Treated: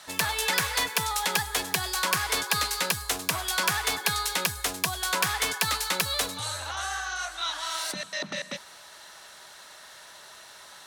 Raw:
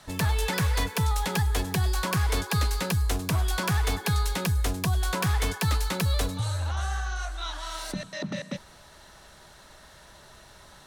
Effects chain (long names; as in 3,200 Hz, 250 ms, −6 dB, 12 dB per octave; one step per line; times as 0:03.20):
high-pass filter 1,200 Hz 6 dB per octave
level +6.5 dB